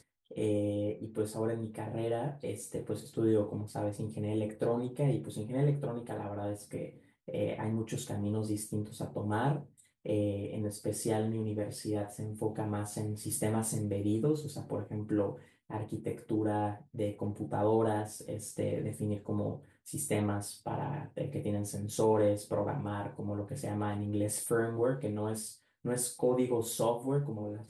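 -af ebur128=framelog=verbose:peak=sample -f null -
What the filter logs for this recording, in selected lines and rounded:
Integrated loudness:
  I:         -34.5 LUFS
  Threshold: -44.6 LUFS
Loudness range:
  LRA:         3.0 LU
  Threshold: -54.7 LUFS
  LRA low:   -36.2 LUFS
  LRA high:  -33.2 LUFS
Sample peak:
  Peak:      -17.7 dBFS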